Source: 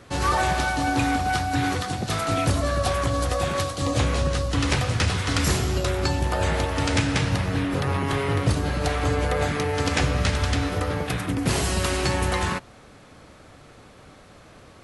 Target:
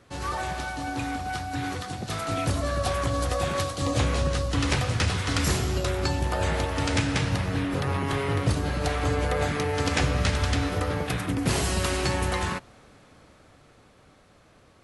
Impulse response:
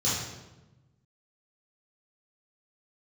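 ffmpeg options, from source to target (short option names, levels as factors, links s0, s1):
-af "dynaudnorm=f=230:g=21:m=3.76,volume=0.376"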